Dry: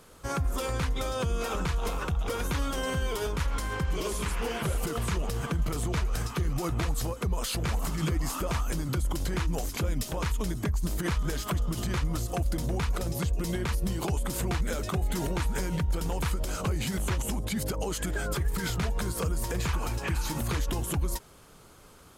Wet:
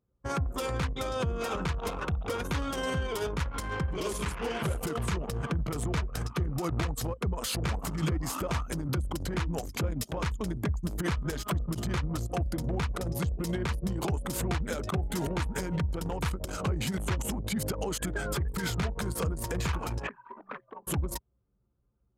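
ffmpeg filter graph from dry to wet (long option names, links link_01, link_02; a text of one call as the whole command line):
ffmpeg -i in.wav -filter_complex "[0:a]asettb=1/sr,asplit=3[link_01][link_02][link_03];[link_01]atrim=end=20.074[link_04];[link_02]atrim=start=20.07:end=20.87,asetpts=PTS-STARTPTS,afade=type=in:duration=0.004:curve=qsin,afade=type=out:start_time=0.796:duration=0.004:curve=qsin,highpass=130,lowpass=3900,afreqshift=77,acrossover=split=590 2300:gain=0.2 1 0.112[link_05][link_06][link_07];[link_05][link_06][link_07]amix=inputs=3:normalize=0[link_08];[link_03]atrim=start=20.866[link_09];[link_04][link_08]acrossfade=duration=0.004:curve1=hsin:curve2=qsin[link_10];[link_10][link_09]acrossfade=duration=0.004:curve1=qsin:curve2=hsin,highpass=frequency=56:width=0.5412,highpass=frequency=56:width=1.3066,anlmdn=3.98" out.wav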